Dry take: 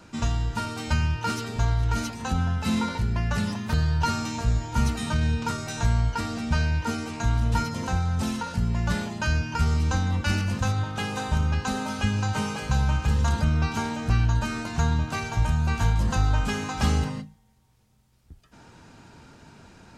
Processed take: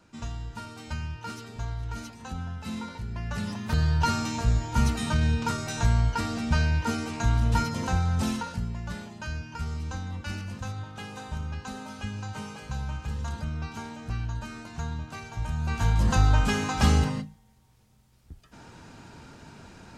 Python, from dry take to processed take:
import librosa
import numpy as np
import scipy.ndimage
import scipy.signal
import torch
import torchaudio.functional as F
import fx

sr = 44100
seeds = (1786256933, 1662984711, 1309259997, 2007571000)

y = fx.gain(x, sr, db=fx.line((3.04, -10.0), (3.86, 0.0), (8.32, 0.0), (8.81, -10.0), (15.33, -10.0), (16.09, 2.0)))